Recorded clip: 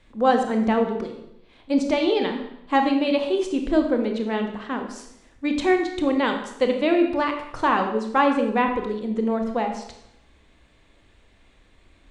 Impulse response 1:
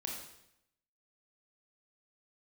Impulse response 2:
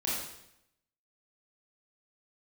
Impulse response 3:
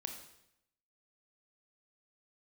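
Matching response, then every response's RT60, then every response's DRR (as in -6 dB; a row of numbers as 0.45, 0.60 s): 3; 0.80, 0.80, 0.80 s; -1.0, -7.0, 4.0 dB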